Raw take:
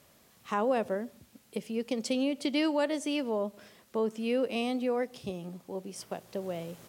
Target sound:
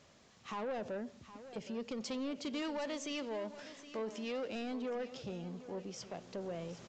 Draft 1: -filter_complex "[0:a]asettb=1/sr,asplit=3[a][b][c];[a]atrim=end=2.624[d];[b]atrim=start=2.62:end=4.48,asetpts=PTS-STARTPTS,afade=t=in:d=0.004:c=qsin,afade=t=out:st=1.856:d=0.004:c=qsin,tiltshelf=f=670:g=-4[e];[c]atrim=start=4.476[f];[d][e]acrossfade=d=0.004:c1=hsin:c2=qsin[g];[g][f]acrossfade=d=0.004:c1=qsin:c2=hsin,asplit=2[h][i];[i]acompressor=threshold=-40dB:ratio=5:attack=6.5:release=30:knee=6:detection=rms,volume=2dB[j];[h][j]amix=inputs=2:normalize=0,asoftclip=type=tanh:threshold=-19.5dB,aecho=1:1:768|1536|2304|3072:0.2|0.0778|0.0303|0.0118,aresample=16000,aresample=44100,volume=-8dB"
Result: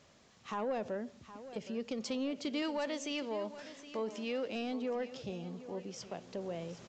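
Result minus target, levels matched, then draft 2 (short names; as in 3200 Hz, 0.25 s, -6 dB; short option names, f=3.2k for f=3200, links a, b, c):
soft clip: distortion -8 dB
-filter_complex "[0:a]asettb=1/sr,asplit=3[a][b][c];[a]atrim=end=2.624[d];[b]atrim=start=2.62:end=4.48,asetpts=PTS-STARTPTS,afade=t=in:d=0.004:c=qsin,afade=t=out:st=1.856:d=0.004:c=qsin,tiltshelf=f=670:g=-4[e];[c]atrim=start=4.476[f];[d][e]acrossfade=d=0.004:c1=hsin:c2=qsin[g];[g][f]acrossfade=d=0.004:c1=qsin:c2=hsin,asplit=2[h][i];[i]acompressor=threshold=-40dB:ratio=5:attack=6.5:release=30:knee=6:detection=rms,volume=2dB[j];[h][j]amix=inputs=2:normalize=0,asoftclip=type=tanh:threshold=-26.5dB,aecho=1:1:768|1536|2304|3072:0.2|0.0778|0.0303|0.0118,aresample=16000,aresample=44100,volume=-8dB"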